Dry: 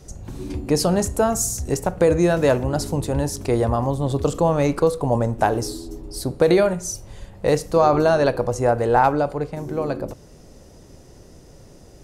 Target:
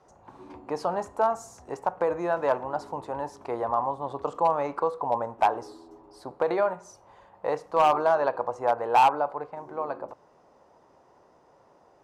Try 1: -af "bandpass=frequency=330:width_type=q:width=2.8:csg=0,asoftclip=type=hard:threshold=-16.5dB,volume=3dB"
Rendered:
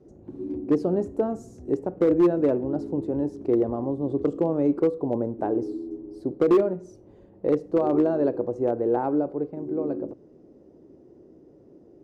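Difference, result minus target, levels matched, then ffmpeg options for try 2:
250 Hz band +13.5 dB
-af "bandpass=frequency=960:width_type=q:width=2.8:csg=0,asoftclip=type=hard:threshold=-16.5dB,volume=3dB"

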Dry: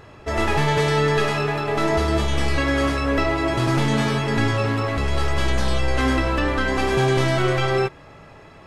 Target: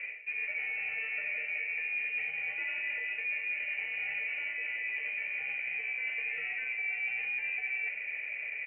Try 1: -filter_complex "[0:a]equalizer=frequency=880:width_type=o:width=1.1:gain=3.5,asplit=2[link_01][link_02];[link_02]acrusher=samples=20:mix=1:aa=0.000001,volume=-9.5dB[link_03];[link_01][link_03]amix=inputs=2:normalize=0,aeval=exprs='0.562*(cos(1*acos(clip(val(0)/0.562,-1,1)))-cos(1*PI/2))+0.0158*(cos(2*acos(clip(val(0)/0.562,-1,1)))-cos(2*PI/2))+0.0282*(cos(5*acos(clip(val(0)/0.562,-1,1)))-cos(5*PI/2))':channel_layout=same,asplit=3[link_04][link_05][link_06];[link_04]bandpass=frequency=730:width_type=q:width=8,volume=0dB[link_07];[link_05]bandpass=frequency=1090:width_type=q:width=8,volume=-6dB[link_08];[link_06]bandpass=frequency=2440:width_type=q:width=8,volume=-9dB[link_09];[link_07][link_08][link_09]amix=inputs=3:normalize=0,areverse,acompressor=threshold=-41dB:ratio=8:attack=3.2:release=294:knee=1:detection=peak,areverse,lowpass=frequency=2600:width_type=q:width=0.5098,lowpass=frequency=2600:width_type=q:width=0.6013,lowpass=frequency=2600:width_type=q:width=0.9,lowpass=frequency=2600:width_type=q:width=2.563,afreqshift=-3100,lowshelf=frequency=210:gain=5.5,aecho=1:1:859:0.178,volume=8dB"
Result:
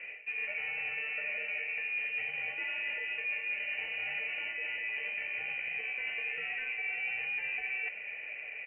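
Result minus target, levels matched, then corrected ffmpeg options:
1,000 Hz band +5.0 dB
-filter_complex "[0:a]equalizer=frequency=880:width_type=o:width=1.1:gain=15,asplit=2[link_01][link_02];[link_02]acrusher=samples=20:mix=1:aa=0.000001,volume=-9.5dB[link_03];[link_01][link_03]amix=inputs=2:normalize=0,aeval=exprs='0.562*(cos(1*acos(clip(val(0)/0.562,-1,1)))-cos(1*PI/2))+0.0158*(cos(2*acos(clip(val(0)/0.562,-1,1)))-cos(2*PI/2))+0.0282*(cos(5*acos(clip(val(0)/0.562,-1,1)))-cos(5*PI/2))':channel_layout=same,asplit=3[link_04][link_05][link_06];[link_04]bandpass=frequency=730:width_type=q:width=8,volume=0dB[link_07];[link_05]bandpass=frequency=1090:width_type=q:width=8,volume=-6dB[link_08];[link_06]bandpass=frequency=2440:width_type=q:width=8,volume=-9dB[link_09];[link_07][link_08][link_09]amix=inputs=3:normalize=0,areverse,acompressor=threshold=-41dB:ratio=8:attack=3.2:release=294:knee=1:detection=peak,areverse,lowpass=frequency=2600:width_type=q:width=0.5098,lowpass=frequency=2600:width_type=q:width=0.6013,lowpass=frequency=2600:width_type=q:width=0.9,lowpass=frequency=2600:width_type=q:width=2.563,afreqshift=-3100,lowshelf=frequency=210:gain=5.5,aecho=1:1:859:0.178,volume=8dB"

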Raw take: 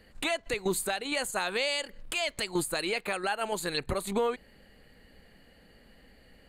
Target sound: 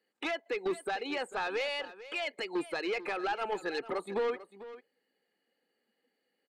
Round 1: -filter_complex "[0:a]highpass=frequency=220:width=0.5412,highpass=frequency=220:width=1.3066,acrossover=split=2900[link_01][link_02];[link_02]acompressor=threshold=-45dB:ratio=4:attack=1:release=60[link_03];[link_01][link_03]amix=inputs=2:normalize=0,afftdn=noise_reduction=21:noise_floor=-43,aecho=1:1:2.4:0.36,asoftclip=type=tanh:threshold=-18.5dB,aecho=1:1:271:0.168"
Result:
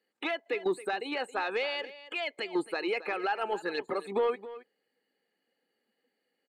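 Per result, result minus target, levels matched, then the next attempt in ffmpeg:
echo 174 ms early; soft clipping: distortion −11 dB
-filter_complex "[0:a]highpass=frequency=220:width=0.5412,highpass=frequency=220:width=1.3066,acrossover=split=2900[link_01][link_02];[link_02]acompressor=threshold=-45dB:ratio=4:attack=1:release=60[link_03];[link_01][link_03]amix=inputs=2:normalize=0,afftdn=noise_reduction=21:noise_floor=-43,aecho=1:1:2.4:0.36,asoftclip=type=tanh:threshold=-18.5dB,aecho=1:1:445:0.168"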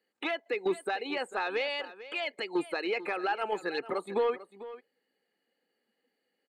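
soft clipping: distortion −11 dB
-filter_complex "[0:a]highpass=frequency=220:width=0.5412,highpass=frequency=220:width=1.3066,acrossover=split=2900[link_01][link_02];[link_02]acompressor=threshold=-45dB:ratio=4:attack=1:release=60[link_03];[link_01][link_03]amix=inputs=2:normalize=0,afftdn=noise_reduction=21:noise_floor=-43,aecho=1:1:2.4:0.36,asoftclip=type=tanh:threshold=-26.5dB,aecho=1:1:445:0.168"

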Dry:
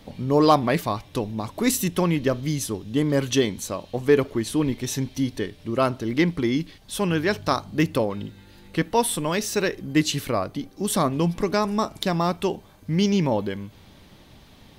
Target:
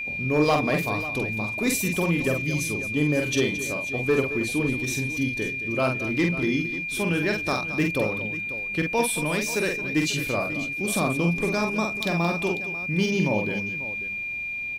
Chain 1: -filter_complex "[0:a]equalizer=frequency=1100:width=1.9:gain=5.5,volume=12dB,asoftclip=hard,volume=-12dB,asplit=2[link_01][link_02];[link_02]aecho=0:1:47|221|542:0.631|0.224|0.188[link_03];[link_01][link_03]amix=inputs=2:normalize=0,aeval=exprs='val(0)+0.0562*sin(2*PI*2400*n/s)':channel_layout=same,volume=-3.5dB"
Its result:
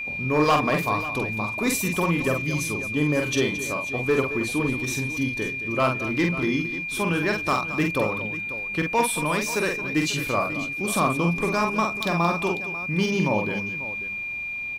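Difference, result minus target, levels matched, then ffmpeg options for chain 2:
1,000 Hz band +5.0 dB
-filter_complex "[0:a]equalizer=frequency=1100:width=1.9:gain=-3.5,volume=12dB,asoftclip=hard,volume=-12dB,asplit=2[link_01][link_02];[link_02]aecho=0:1:47|221|542:0.631|0.224|0.188[link_03];[link_01][link_03]amix=inputs=2:normalize=0,aeval=exprs='val(0)+0.0562*sin(2*PI*2400*n/s)':channel_layout=same,volume=-3.5dB"

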